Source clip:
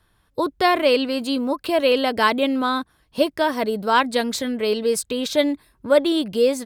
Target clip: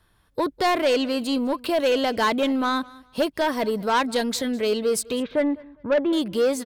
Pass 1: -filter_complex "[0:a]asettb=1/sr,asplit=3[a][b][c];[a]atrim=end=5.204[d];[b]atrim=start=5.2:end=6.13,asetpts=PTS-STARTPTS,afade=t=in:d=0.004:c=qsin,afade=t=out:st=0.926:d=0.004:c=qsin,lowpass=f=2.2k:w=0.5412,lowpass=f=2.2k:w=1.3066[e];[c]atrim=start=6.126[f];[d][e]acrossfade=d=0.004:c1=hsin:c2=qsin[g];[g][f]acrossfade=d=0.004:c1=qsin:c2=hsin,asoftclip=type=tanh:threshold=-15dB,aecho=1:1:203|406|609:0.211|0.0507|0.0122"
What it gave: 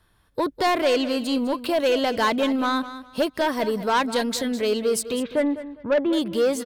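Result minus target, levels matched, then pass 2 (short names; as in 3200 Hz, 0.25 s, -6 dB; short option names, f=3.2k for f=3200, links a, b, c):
echo-to-direct +9 dB
-filter_complex "[0:a]asettb=1/sr,asplit=3[a][b][c];[a]atrim=end=5.204[d];[b]atrim=start=5.2:end=6.13,asetpts=PTS-STARTPTS,afade=t=in:d=0.004:c=qsin,afade=t=out:st=0.926:d=0.004:c=qsin,lowpass=f=2.2k:w=0.5412,lowpass=f=2.2k:w=1.3066[e];[c]atrim=start=6.126[f];[d][e]acrossfade=d=0.004:c1=hsin:c2=qsin[g];[g][f]acrossfade=d=0.004:c1=qsin:c2=hsin,asoftclip=type=tanh:threshold=-15dB,aecho=1:1:203|406:0.075|0.018"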